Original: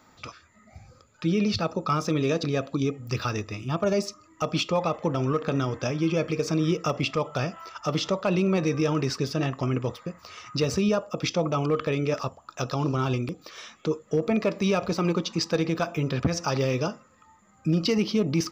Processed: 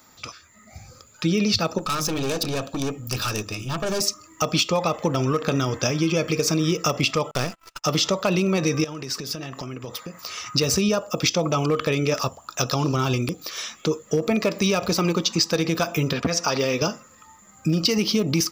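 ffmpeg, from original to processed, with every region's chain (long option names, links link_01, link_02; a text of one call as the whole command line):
ffmpeg -i in.wav -filter_complex "[0:a]asettb=1/sr,asplit=3[link_01][link_02][link_03];[link_01]atrim=end=1.784[link_04];[link_02]atrim=start=1.78:end=4.01,asetpts=PTS-STARTPTS,afade=type=in:duration=0.004:curve=qsin,afade=type=out:start_time=2.226:duration=0.004:curve=qsin,bandreject=frequency=50:width_type=h:width=6,bandreject=frequency=100:width_type=h:width=6,bandreject=frequency=150:width_type=h:width=6,bandreject=frequency=200:width_type=h:width=6,bandreject=frequency=250:width_type=h:width=6,bandreject=frequency=300:width_type=h:width=6,aeval=exprs='(tanh(25.1*val(0)+0.35)-tanh(0.35))/25.1':channel_layout=same,asuperstop=centerf=2000:order=4:qfactor=7.9[link_05];[link_03]atrim=start=4.006[link_06];[link_04][link_05]acrossfade=duration=0.004:curve1=hsin:curve2=qsin[link_07];[link_07][link_06]acrossfade=duration=0.004:curve1=qsin:curve2=hsin,asettb=1/sr,asplit=3[link_08][link_09][link_10];[link_08]atrim=end=7.314[link_11];[link_09]atrim=start=7.31:end=7.84,asetpts=PTS-STARTPTS,afade=type=in:duration=0.004:curve=qsin,afade=type=out:start_time=0.526:duration=0.004:curve=qsin,aeval=exprs='if(lt(val(0),0),0.251*val(0),val(0))':channel_layout=same,agate=range=-34dB:threshold=-43dB:ratio=16:release=100:detection=peak[link_12];[link_10]atrim=start=7.836[link_13];[link_11][link_12]acrossfade=duration=0.004:curve1=hsin:curve2=qsin[link_14];[link_14][link_13]acrossfade=duration=0.004:curve1=qsin:curve2=hsin,asettb=1/sr,asplit=3[link_15][link_16][link_17];[link_15]atrim=end=8.844[link_18];[link_16]atrim=start=8.84:end=10.41,asetpts=PTS-STARTPTS,afade=type=in:duration=0.004:curve=qsin,afade=type=out:start_time=1.566:duration=0.004:curve=qsin,highpass=120,acompressor=threshold=-35dB:ratio=8:attack=3.2:release=140:knee=1:detection=peak[link_19];[link_17]atrim=start=10.406[link_20];[link_18][link_19]acrossfade=duration=0.004:curve1=hsin:curve2=qsin[link_21];[link_21][link_20]acrossfade=duration=0.004:curve1=qsin:curve2=hsin,asettb=1/sr,asplit=3[link_22][link_23][link_24];[link_22]atrim=end=16.134[link_25];[link_23]atrim=start=16.13:end=16.82,asetpts=PTS-STARTPTS,afade=type=in:duration=0.004:curve=qsin,afade=type=out:start_time=0.686:duration=0.004:curve=qsin,lowpass=frequency=3900:poles=1,lowshelf=frequency=180:gain=-10,aecho=1:1:4.3:0.31,atrim=end_sample=30429[link_26];[link_24]atrim=start=16.816[link_27];[link_25][link_26]acrossfade=duration=0.004:curve1=hsin:curve2=qsin[link_28];[link_28][link_27]acrossfade=duration=0.004:curve1=qsin:curve2=hsin,dynaudnorm=framelen=400:gausssize=3:maxgain=5dB,aemphasis=mode=production:type=75kf,acompressor=threshold=-17dB:ratio=6" out.wav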